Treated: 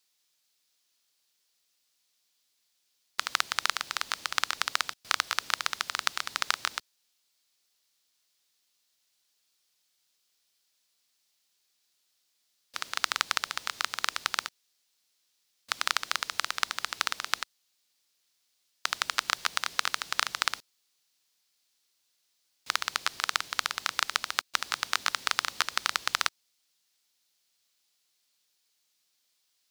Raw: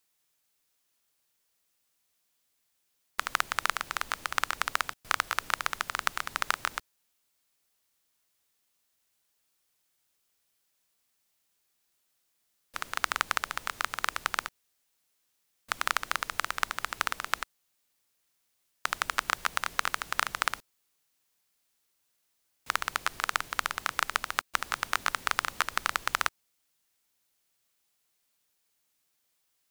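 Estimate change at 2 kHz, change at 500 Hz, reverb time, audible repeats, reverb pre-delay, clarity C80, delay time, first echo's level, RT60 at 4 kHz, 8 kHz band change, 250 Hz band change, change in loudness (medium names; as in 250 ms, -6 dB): -0.5 dB, -3.0 dB, no reverb, no echo, no reverb, no reverb, no echo, no echo, no reverb, +3.0 dB, -4.0 dB, +1.0 dB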